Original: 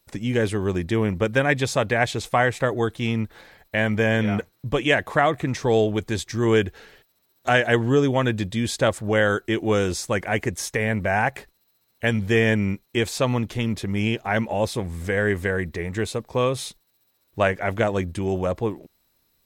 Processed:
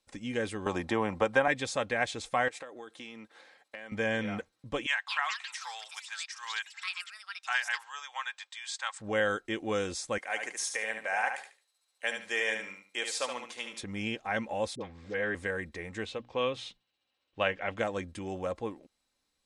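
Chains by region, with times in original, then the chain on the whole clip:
0:00.66–0:01.48: parametric band 860 Hz +12.5 dB 1.1 octaves + multiband upward and downward compressor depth 70%
0:02.48–0:03.92: high-pass filter 280 Hz + downward compressor 16 to 1, threshold −30 dBFS
0:04.86–0:09.00: Chebyshev band-pass filter 880–8,400 Hz, order 4 + delay with pitch and tempo change per echo 221 ms, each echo +7 semitones, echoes 3, each echo −6 dB
0:10.18–0:13.81: high-pass filter 610 Hz + high-shelf EQ 6,500 Hz +7 dB + repeating echo 73 ms, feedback 26%, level −6.5 dB
0:14.75–0:15.35: low-pass filter 5,000 Hz 24 dB per octave + low-shelf EQ 120 Hz −7.5 dB + all-pass dispersion highs, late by 57 ms, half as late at 590 Hz
0:16.05–0:17.77: low-pass filter 4,200 Hz + parametric band 2,900 Hz +9.5 dB 0.4 octaves + mains-hum notches 60/120/180/240/300 Hz
whole clip: Butterworth low-pass 10,000 Hz 48 dB per octave; low-shelf EQ 340 Hz −7.5 dB; comb filter 3.8 ms, depth 36%; level −8 dB

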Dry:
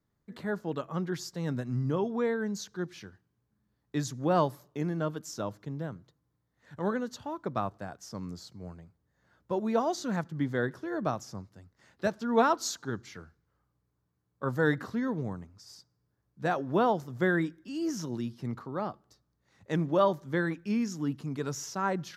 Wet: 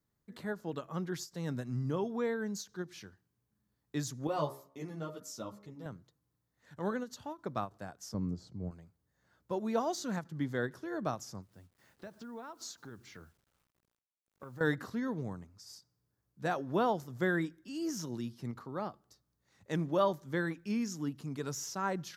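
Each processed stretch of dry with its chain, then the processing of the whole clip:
0:04.27–0:05.86: notch filter 1,600 Hz, Q 6.5 + hum removal 68.58 Hz, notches 33 + string-ensemble chorus
0:08.14–0:08.71: low-pass filter 8,300 Hz + tilt shelving filter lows +9.5 dB, about 890 Hz
0:11.42–0:14.61: low-pass filter 3,200 Hz 6 dB per octave + downward compressor 5 to 1, threshold −40 dBFS + bit-depth reduction 12 bits, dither none
whole clip: de-essing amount 85%; high-shelf EQ 5,300 Hz +8 dB; every ending faded ahead of time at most 320 dB per second; level −4.5 dB

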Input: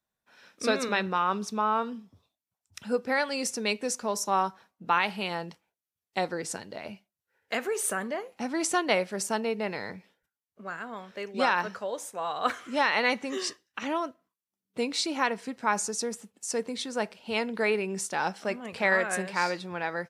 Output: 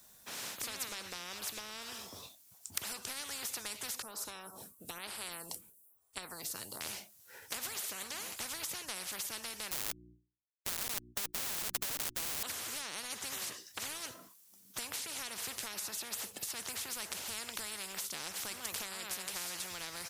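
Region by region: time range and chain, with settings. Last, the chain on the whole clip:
0:04.02–0:06.81: flat-topped bell 3,200 Hz −15.5 dB 2.3 octaves + phaser with staggered stages 1.1 Hz
0:09.71–0:12.43: comparator with hysteresis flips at −35.5 dBFS + mains-hum notches 60/120/180/240/300/360 Hz
whole clip: bass and treble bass 0 dB, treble +13 dB; downward compressor 10 to 1, threshold −32 dBFS; every bin compressed towards the loudest bin 10 to 1; level +2 dB

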